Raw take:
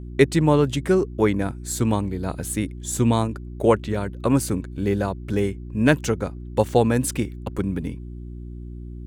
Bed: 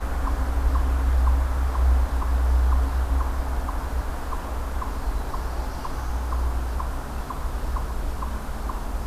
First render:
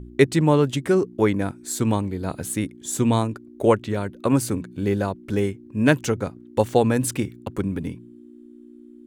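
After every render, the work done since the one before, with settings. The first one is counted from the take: de-hum 60 Hz, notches 3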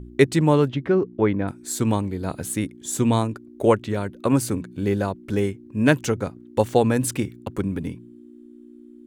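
0.69–1.48 s: distance through air 290 m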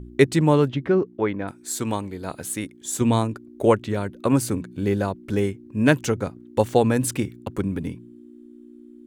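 1.02–3.01 s: bass shelf 310 Hz -8.5 dB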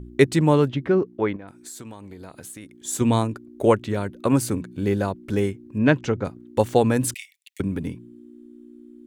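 1.36–2.75 s: compression, threshold -36 dBFS; 5.78–6.25 s: distance through air 150 m; 7.14–7.60 s: steep high-pass 1.9 kHz 96 dB/octave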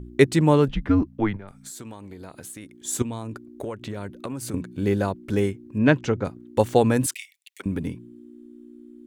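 0.68–1.71 s: frequency shift -99 Hz; 3.02–4.54 s: compression 10:1, threshold -28 dBFS; 7.06–7.66 s: high-pass 890 Hz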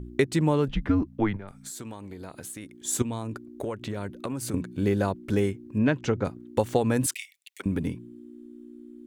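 compression 6:1, threshold -19 dBFS, peak gain reduction 9.5 dB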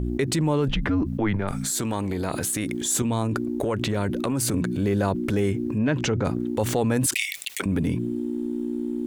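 transient shaper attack -5 dB, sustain +2 dB; level flattener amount 70%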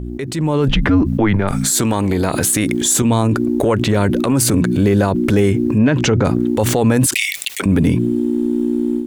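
peak limiter -16 dBFS, peak gain reduction 7 dB; level rider gain up to 11 dB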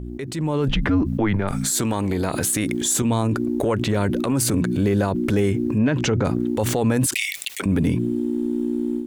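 trim -6 dB

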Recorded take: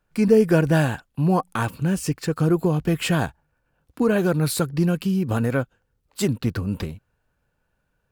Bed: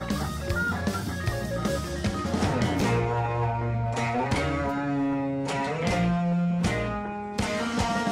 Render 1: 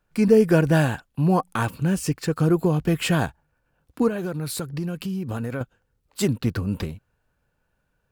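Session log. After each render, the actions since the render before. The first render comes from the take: 4.08–5.61 s: compression 2.5:1, threshold -28 dBFS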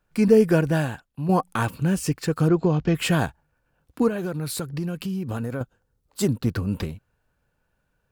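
0.42–1.29 s: fade out quadratic, to -7.5 dB; 2.48–2.95 s: steep low-pass 6.5 kHz 48 dB/octave; 5.43–6.49 s: peaking EQ 2.4 kHz -6 dB 1.2 oct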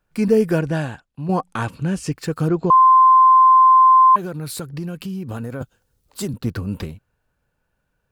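0.59–2.13 s: low-pass 8.3 kHz; 2.70–4.16 s: bleep 1.04 kHz -7.5 dBFS; 5.62–6.34 s: three bands compressed up and down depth 40%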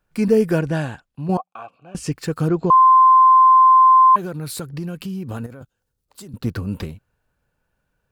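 1.37–1.95 s: vowel filter a; 5.46–6.34 s: level held to a coarse grid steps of 19 dB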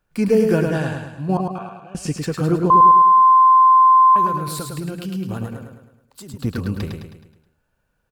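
feedback delay 106 ms, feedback 48%, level -4.5 dB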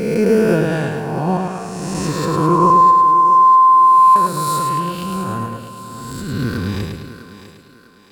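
reverse spectral sustain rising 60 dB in 1.75 s; on a send: thinning echo 651 ms, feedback 42%, high-pass 280 Hz, level -12 dB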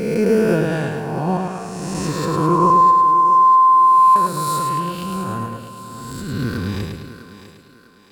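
trim -2 dB

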